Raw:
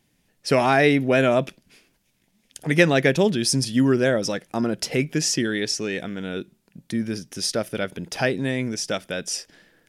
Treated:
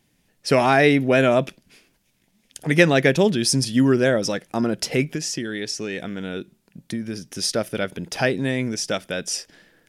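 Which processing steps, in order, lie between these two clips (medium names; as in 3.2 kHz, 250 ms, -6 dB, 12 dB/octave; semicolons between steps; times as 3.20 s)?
5.04–7.25 s: compression 5:1, threshold -26 dBFS, peak gain reduction 8 dB; trim +1.5 dB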